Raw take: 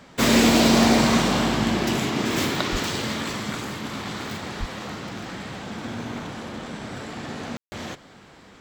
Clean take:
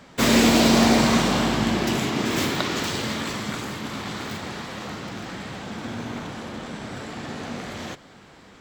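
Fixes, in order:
high-pass at the plosives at 0:02.71/0:04.59
ambience match 0:07.57–0:07.72

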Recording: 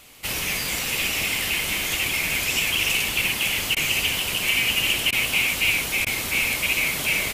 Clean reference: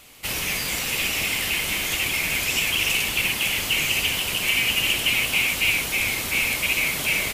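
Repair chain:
repair the gap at 0:03.75/0:05.11/0:06.05, 14 ms

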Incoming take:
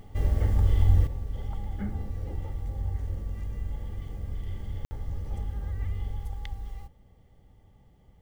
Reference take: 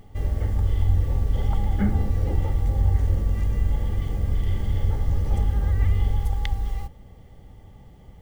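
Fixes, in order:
ambience match 0:04.85–0:04.91
level correction +11 dB, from 0:01.07

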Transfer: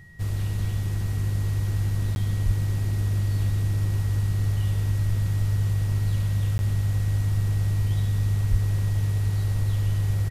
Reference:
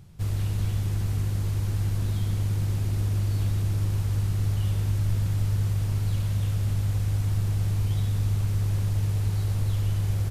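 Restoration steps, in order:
notch filter 1,900 Hz, Q 30
high-pass at the plosives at 0:02.45/0:08.50
repair the gap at 0:02.15/0:06.58, 11 ms
echo removal 1,026 ms −12 dB

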